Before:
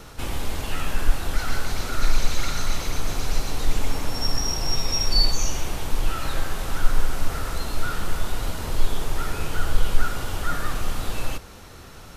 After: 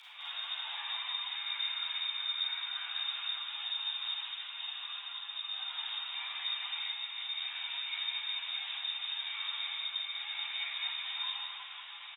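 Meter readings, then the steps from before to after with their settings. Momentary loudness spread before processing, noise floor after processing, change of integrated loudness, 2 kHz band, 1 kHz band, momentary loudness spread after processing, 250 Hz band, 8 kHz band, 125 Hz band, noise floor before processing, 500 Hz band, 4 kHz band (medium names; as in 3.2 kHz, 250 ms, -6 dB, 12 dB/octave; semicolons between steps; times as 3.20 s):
7 LU, -47 dBFS, -7.0 dB, -7.0 dB, -14.5 dB, 5 LU, under -40 dB, under -40 dB, under -40 dB, -42 dBFS, under -30 dB, -1.5 dB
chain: compression, threshold -25 dBFS, peak gain reduction 17 dB; tilt EQ +2 dB/octave; peak limiter -26 dBFS, peak gain reduction 7 dB; frequency inversion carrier 3.6 kHz; steep high-pass 740 Hz 36 dB/octave; upward compressor, threshold -44 dBFS; frequency shift +56 Hz; bouncing-ball echo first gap 210 ms, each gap 0.85×, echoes 5; Schroeder reverb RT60 0.63 s, combs from 32 ms, DRR -5 dB; three-phase chorus; trim -7 dB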